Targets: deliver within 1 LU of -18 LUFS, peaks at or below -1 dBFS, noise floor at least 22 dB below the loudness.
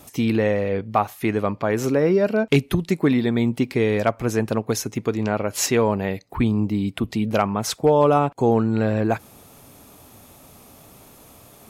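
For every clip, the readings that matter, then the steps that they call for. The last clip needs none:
loudness -21.5 LUFS; peak level -5.0 dBFS; loudness target -18.0 LUFS
-> trim +3.5 dB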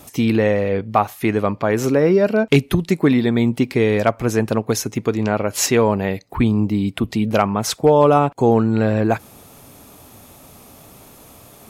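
loudness -18.0 LUFS; peak level -1.5 dBFS; noise floor -46 dBFS

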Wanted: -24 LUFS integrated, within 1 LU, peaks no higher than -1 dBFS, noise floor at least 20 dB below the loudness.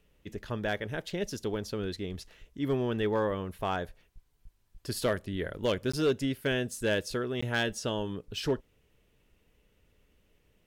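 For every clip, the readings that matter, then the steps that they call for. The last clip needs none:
clipped samples 0.2%; clipping level -20.5 dBFS; dropouts 2; longest dropout 15 ms; loudness -32.0 LUFS; peak level -20.5 dBFS; loudness target -24.0 LUFS
-> clip repair -20.5 dBFS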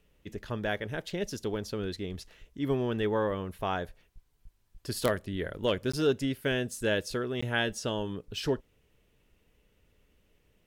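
clipped samples 0.0%; dropouts 2; longest dropout 15 ms
-> interpolate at 5.92/7.41 s, 15 ms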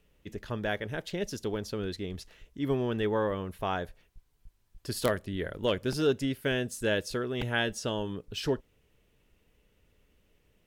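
dropouts 0; loudness -32.0 LUFS; peak level -11.5 dBFS; loudness target -24.0 LUFS
-> trim +8 dB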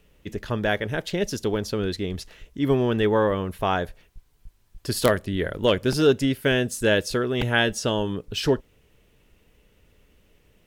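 loudness -24.0 LUFS; peak level -3.5 dBFS; noise floor -61 dBFS

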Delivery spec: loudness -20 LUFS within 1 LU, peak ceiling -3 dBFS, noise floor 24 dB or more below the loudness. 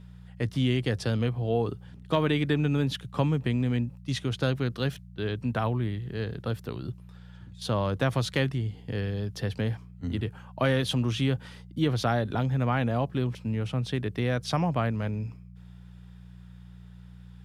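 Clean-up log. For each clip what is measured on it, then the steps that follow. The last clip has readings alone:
hum 60 Hz; highest harmonic 180 Hz; hum level -46 dBFS; loudness -29.0 LUFS; peak level -11.0 dBFS; loudness target -20.0 LUFS
-> de-hum 60 Hz, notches 3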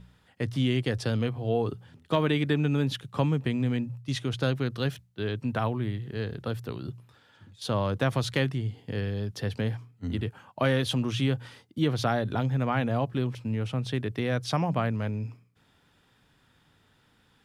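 hum not found; loudness -29.5 LUFS; peak level -11.0 dBFS; loudness target -20.0 LUFS
-> trim +9.5 dB; peak limiter -3 dBFS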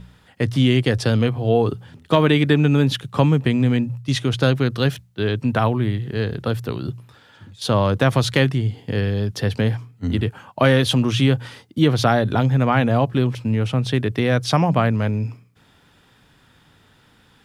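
loudness -20.0 LUFS; peak level -3.0 dBFS; noise floor -56 dBFS

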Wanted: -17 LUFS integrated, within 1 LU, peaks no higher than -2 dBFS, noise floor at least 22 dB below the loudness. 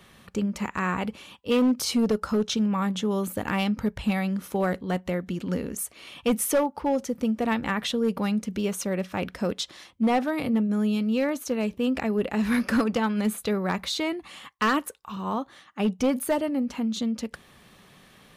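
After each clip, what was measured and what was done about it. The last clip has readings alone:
clipped samples 0.9%; clipping level -17.0 dBFS; loudness -27.0 LUFS; peak level -17.0 dBFS; loudness target -17.0 LUFS
-> clip repair -17 dBFS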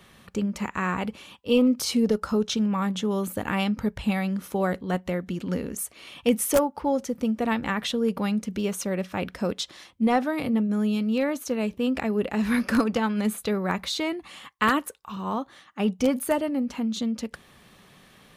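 clipped samples 0.0%; loudness -26.5 LUFS; peak level -8.0 dBFS; loudness target -17.0 LUFS
-> trim +9.5 dB; peak limiter -2 dBFS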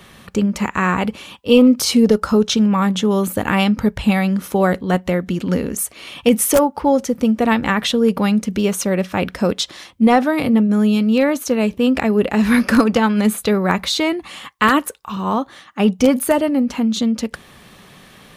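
loudness -17.0 LUFS; peak level -2.0 dBFS; noise floor -46 dBFS

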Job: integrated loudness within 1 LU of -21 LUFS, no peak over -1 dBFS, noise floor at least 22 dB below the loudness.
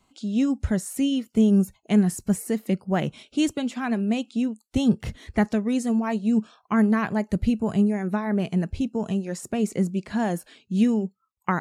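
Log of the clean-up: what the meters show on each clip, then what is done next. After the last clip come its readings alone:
loudness -24.5 LUFS; peak level -8.0 dBFS; loudness target -21.0 LUFS
-> trim +3.5 dB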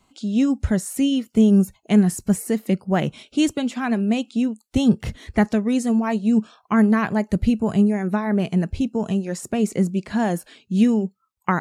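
loudness -21.0 LUFS; peak level -4.5 dBFS; noise floor -68 dBFS

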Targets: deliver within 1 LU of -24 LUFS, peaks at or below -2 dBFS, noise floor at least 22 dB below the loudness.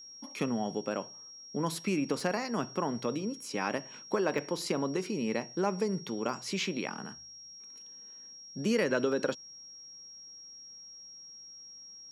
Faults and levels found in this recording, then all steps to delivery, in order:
dropouts 5; longest dropout 2.1 ms; steady tone 5.6 kHz; tone level -47 dBFS; loudness -33.0 LUFS; peak level -15.5 dBFS; loudness target -24.0 LUFS
-> interpolate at 0.39/2.20/4.38/6.29/9.12 s, 2.1 ms; band-stop 5.6 kHz, Q 30; trim +9 dB

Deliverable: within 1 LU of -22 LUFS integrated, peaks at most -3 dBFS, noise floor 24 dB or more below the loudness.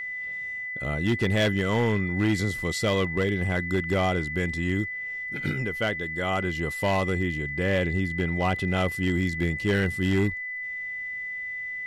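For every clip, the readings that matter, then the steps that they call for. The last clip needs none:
clipped samples 1.2%; clipping level -17.5 dBFS; steady tone 2 kHz; tone level -31 dBFS; loudness -26.5 LUFS; peak level -17.5 dBFS; loudness target -22.0 LUFS
-> clip repair -17.5 dBFS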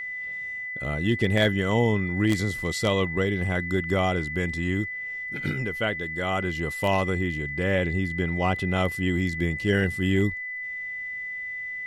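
clipped samples 0.0%; steady tone 2 kHz; tone level -31 dBFS
-> band-stop 2 kHz, Q 30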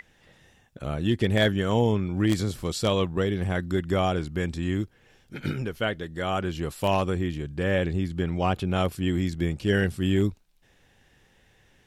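steady tone not found; loudness -26.5 LUFS; peak level -9.0 dBFS; loudness target -22.0 LUFS
-> trim +4.5 dB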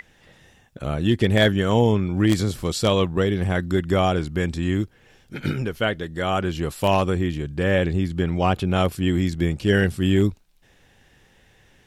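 loudness -22.0 LUFS; peak level -4.5 dBFS; noise floor -57 dBFS

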